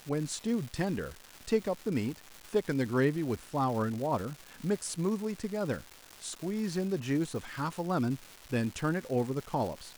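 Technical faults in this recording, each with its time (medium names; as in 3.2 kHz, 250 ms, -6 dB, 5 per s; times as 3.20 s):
crackle 540 per s -38 dBFS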